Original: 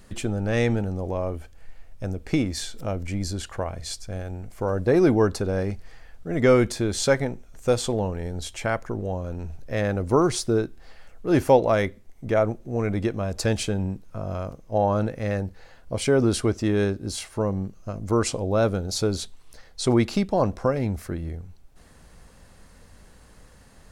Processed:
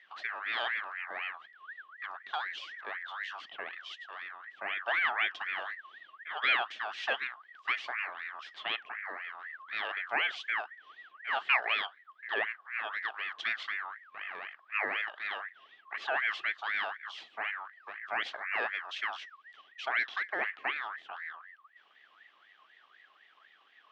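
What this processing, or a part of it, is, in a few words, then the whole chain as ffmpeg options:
voice changer toy: -af "aeval=exprs='val(0)*sin(2*PI*1500*n/s+1500*0.3/4*sin(2*PI*4*n/s))':channel_layout=same,highpass=510,equalizer=frequency=530:width_type=q:width=4:gain=-7,equalizer=frequency=970:width_type=q:width=4:gain=-9,equalizer=frequency=1400:width_type=q:width=4:gain=-8,equalizer=frequency=2200:width_type=q:width=4:gain=-3,equalizer=frequency=3200:width_type=q:width=4:gain=6,lowpass=frequency=3600:width=0.5412,lowpass=frequency=3600:width=1.3066,volume=-4.5dB"

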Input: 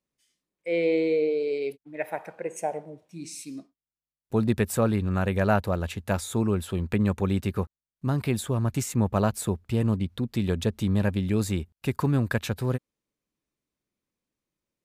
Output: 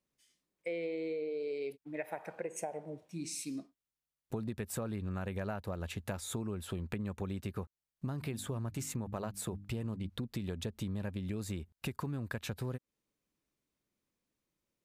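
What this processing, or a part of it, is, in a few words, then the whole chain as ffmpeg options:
serial compression, leveller first: -filter_complex "[0:a]asplit=3[link_01][link_02][link_03];[link_01]afade=type=out:start_time=8.21:duration=0.02[link_04];[link_02]bandreject=frequency=50:width_type=h:width=6,bandreject=frequency=100:width_type=h:width=6,bandreject=frequency=150:width_type=h:width=6,bandreject=frequency=200:width_type=h:width=6,bandreject=frequency=250:width_type=h:width=6,bandreject=frequency=300:width_type=h:width=6,afade=type=in:start_time=8.21:duration=0.02,afade=type=out:start_time=10.08:duration=0.02[link_05];[link_03]afade=type=in:start_time=10.08:duration=0.02[link_06];[link_04][link_05][link_06]amix=inputs=3:normalize=0,acompressor=threshold=-26dB:ratio=2,acompressor=threshold=-36dB:ratio=5"

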